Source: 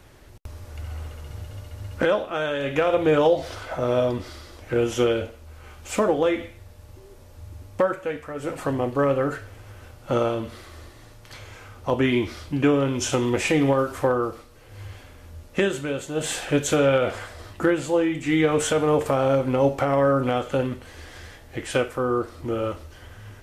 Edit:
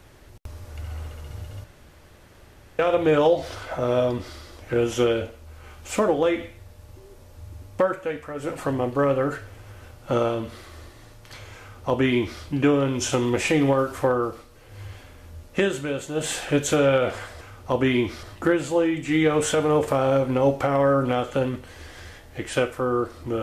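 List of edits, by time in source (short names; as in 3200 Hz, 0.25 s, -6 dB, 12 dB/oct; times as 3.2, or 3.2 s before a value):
1.64–2.79 room tone
11.59–12.41 copy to 17.41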